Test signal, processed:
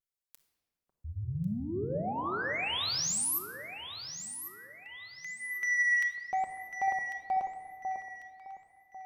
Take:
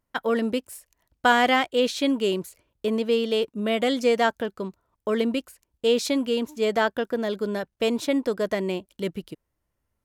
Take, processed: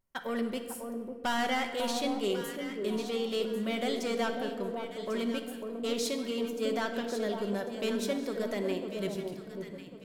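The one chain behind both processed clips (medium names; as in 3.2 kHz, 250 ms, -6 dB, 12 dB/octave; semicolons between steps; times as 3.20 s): treble shelf 4.7 kHz +6.5 dB; vibrato 0.62 Hz 31 cents; saturation -17 dBFS; echo whose repeats swap between lows and highs 548 ms, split 1.1 kHz, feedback 55%, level -5 dB; simulated room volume 2100 m³, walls mixed, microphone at 1.1 m; trim -8.5 dB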